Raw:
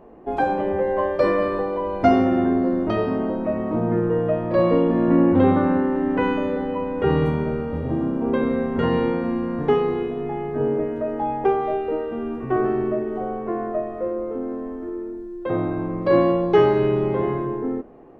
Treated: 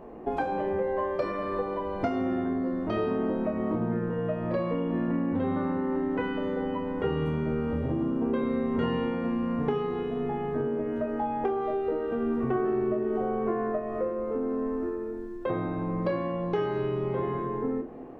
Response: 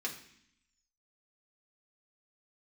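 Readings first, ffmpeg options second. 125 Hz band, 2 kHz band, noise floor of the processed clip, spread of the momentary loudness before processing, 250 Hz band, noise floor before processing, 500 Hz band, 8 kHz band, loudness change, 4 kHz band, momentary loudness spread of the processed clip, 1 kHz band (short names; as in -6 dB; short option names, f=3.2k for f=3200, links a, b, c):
-6.5 dB, -7.5 dB, -35 dBFS, 10 LU, -7.0 dB, -33 dBFS, -8.0 dB, n/a, -7.5 dB, -7.0 dB, 3 LU, -7.5 dB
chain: -filter_complex "[0:a]acompressor=threshold=-28dB:ratio=6,asplit=2[a][b];[1:a]atrim=start_sample=2205,adelay=25[c];[b][c]afir=irnorm=-1:irlink=0,volume=-8dB[d];[a][d]amix=inputs=2:normalize=0,volume=1.5dB"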